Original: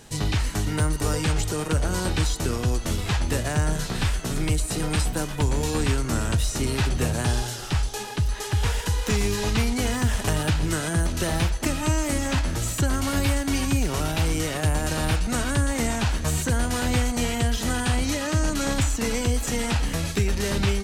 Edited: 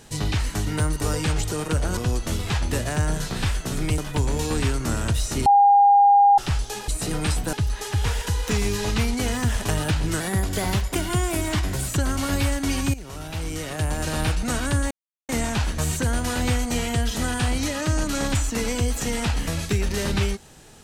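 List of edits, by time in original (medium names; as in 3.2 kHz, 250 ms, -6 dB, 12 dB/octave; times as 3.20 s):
1.97–2.56 s: delete
4.57–5.22 s: move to 8.12 s
6.70–7.62 s: bleep 808 Hz -11 dBFS
10.79–12.72 s: speed 115%
13.78–15.03 s: fade in, from -15.5 dB
15.75 s: insert silence 0.38 s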